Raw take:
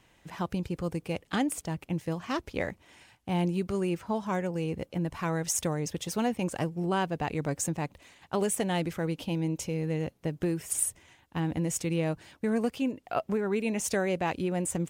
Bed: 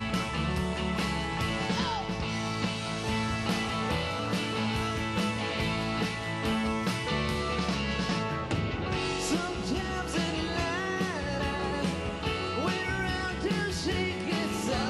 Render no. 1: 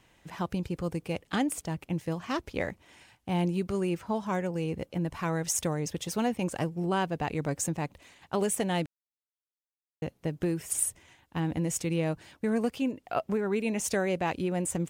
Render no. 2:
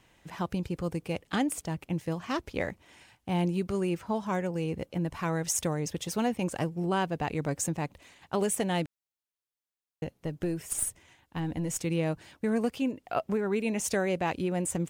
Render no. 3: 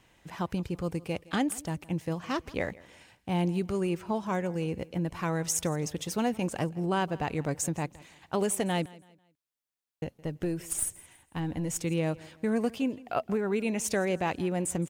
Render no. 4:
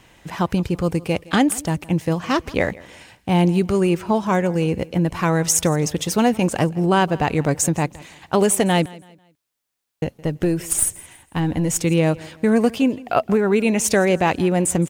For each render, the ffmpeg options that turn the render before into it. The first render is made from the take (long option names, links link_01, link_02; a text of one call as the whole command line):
ffmpeg -i in.wav -filter_complex "[0:a]asplit=3[link_01][link_02][link_03];[link_01]atrim=end=8.86,asetpts=PTS-STARTPTS,afade=type=out:start_time=8.856:duration=0.004:curve=hsin[link_04];[link_02]atrim=start=8.86:end=10.02,asetpts=PTS-STARTPTS,volume=0[link_05];[link_03]atrim=start=10.02,asetpts=PTS-STARTPTS,afade=type=in:duration=0.004:curve=hsin[link_06];[link_04][link_05][link_06]concat=n=3:v=0:a=1" out.wav
ffmpeg -i in.wav -filter_complex "[0:a]asettb=1/sr,asplit=3[link_01][link_02][link_03];[link_01]atrim=end=10.044[link_04];[link_02]atrim=start=10.04:end=11.84,asetpts=PTS-STARTPTS,afade=type=in:duration=0.004:curve=qsin,afade=type=out:start_time=1.796:duration=0.004:curve=qsin,aeval=exprs='(tanh(7.94*val(0)+0.4)-tanh(0.4))/7.94':channel_layout=same[link_05];[link_03]atrim=start=11.836[link_06];[link_04][link_05]acrossfade=duration=0.004:curve1=hsin:curve2=qsin[link_07];[link_07][link_06]acrossfade=duration=0.004:curve1=qsin:curve2=hsin" out.wav
ffmpeg -i in.wav -af "aecho=1:1:165|330|495:0.0841|0.0294|0.0103" out.wav
ffmpeg -i in.wav -af "volume=11.5dB" out.wav